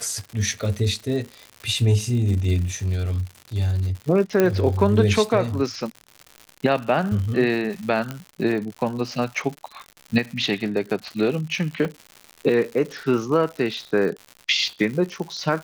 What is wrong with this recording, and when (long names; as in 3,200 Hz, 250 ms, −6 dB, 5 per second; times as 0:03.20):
surface crackle 150 per second −30 dBFS
0:04.40: click −6 dBFS
0:08.11: click −15 dBFS
0:11.85: drop-out 2.2 ms